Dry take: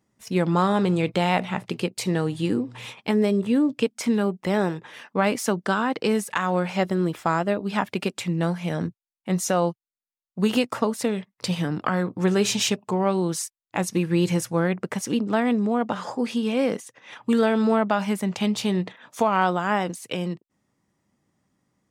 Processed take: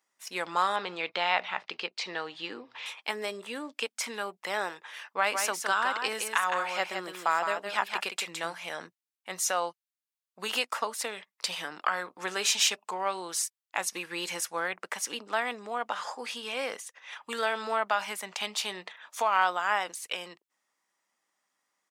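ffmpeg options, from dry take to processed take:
-filter_complex "[0:a]asettb=1/sr,asplit=3[a][b][c];[a]atrim=end=0.764[d];[b]atrim=start=0.76:end=2.86,asetpts=PTS-STARTPTS,afade=t=in:d=0.004:c=qsin,afade=t=out:st=2.096:d=0.004:c=qsin,lowpass=f=5.1k:w=0.5412,lowpass=f=5.1k:w=1.3066[e];[c]atrim=start=2.856[f];[d][e]acrossfade=d=0.004:c1=hsin:c2=qsin[g];[g][f]acrossfade=d=0.004:c1=qsin:c2=hsin,asplit=3[h][i][j];[h]afade=t=out:st=5.32:d=0.02[k];[i]aecho=1:1:163:0.501,afade=t=in:st=5.32:d=0.02,afade=t=out:st=8.53:d=0.02[l];[j]afade=t=in:st=8.53:d=0.02[m];[k][l][m]amix=inputs=3:normalize=0,highpass=950"

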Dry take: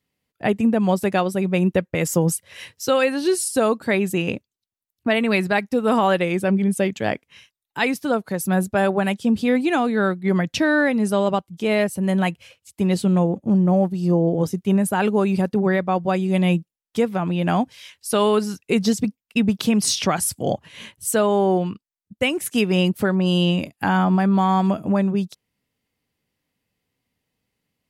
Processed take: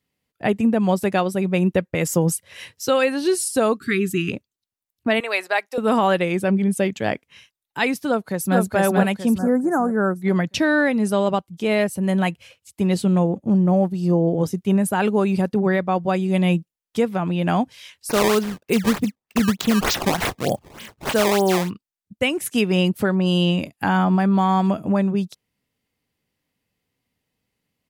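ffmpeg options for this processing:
-filter_complex "[0:a]asplit=3[a][b][c];[a]afade=t=out:st=3.76:d=0.02[d];[b]asuperstop=centerf=710:order=20:qfactor=0.96,afade=t=in:st=3.76:d=0.02,afade=t=out:st=4.31:d=0.02[e];[c]afade=t=in:st=4.31:d=0.02[f];[d][e][f]amix=inputs=3:normalize=0,asettb=1/sr,asplit=3[g][h][i];[g]atrim=end=5.204[j];[h]atrim=start=5.2:end=5.78,asetpts=PTS-STARTPTS,afade=t=in:d=0.004:c=qsin,afade=t=out:st=0.576:d=0.004:c=qsin,highpass=f=500:w=0.5412,highpass=f=500:w=1.3066[k];[i]atrim=start=5.776[l];[j][k]acrossfade=d=0.004:c1=hsin:c2=qsin[m];[m][l]acrossfade=d=0.004:c1=qsin:c2=hsin,asplit=2[n][o];[o]afade=t=in:st=8.07:d=0.01,afade=t=out:st=8.59:d=0.01,aecho=0:1:440|880|1320|1760|2200:0.891251|0.3565|0.1426|0.0570401|0.022816[p];[n][p]amix=inputs=2:normalize=0,asettb=1/sr,asplit=3[q][r][s];[q]atrim=end=9.384[t];[r]atrim=start=9.38:end=10.16,asetpts=PTS-STARTPTS,afade=t=in:d=0.004:c=qsin,afade=t=out:st=0.776:d=0.004:c=qsin,asuperstop=centerf=3100:order=8:qfactor=0.73[u];[s]atrim=start=10.156[v];[t][u]acrossfade=d=0.004:c1=hsin:c2=qsin[w];[w][v]acrossfade=d=0.004:c1=qsin:c2=hsin,asplit=3[x][y][z];[x]afade=t=out:st=18.09:d=0.02[aa];[y]acrusher=samples=18:mix=1:aa=0.000001:lfo=1:lforange=28.8:lforate=3.3,afade=t=in:st=18.09:d=0.02,afade=t=out:st=21.69:d=0.02[ab];[z]afade=t=in:st=21.69:d=0.02[ac];[aa][ab][ac]amix=inputs=3:normalize=0"

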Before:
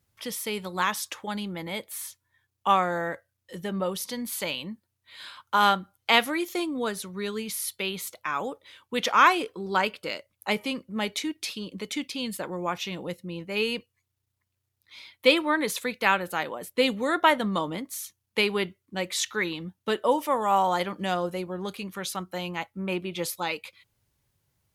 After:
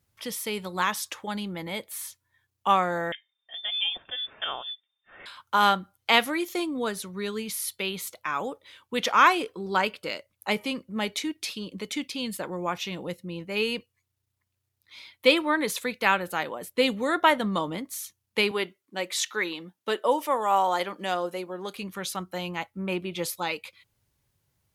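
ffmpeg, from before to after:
-filter_complex "[0:a]asettb=1/sr,asplit=3[a][b][c];[a]atrim=end=3.124[d];[b]atrim=start=3.12:end=5.26,asetpts=PTS-STARTPTS,afade=t=in:d=0.004:c=qsin,afade=t=out:st=2.136:d=0.004:c=qsin,lowpass=f=3.1k:t=q:w=0.5098,lowpass=f=3.1k:t=q:w=0.6013,lowpass=f=3.1k:t=q:w=0.9,lowpass=f=3.1k:t=q:w=2.563,afreqshift=-3700[e];[c]atrim=start=5.256[f];[d][e]acrossfade=d=0.004:c1=hsin:c2=qsin[g];[g][f]acrossfade=d=0.004:c1=qsin:c2=hsin,asettb=1/sr,asplit=3[h][i][j];[h]atrim=end=18.514[k];[i]atrim=start=18.51:end=21.75,asetpts=PTS-STARTPTS,afade=t=in:d=0.004:c=qsin,afade=t=out:st=3.236:d=0.004:c=qsin,highpass=290[l];[j]atrim=start=21.746[m];[k][l]acrossfade=d=0.004:c1=hsin:c2=qsin[n];[n][m]acrossfade=d=0.004:c1=qsin:c2=hsin"

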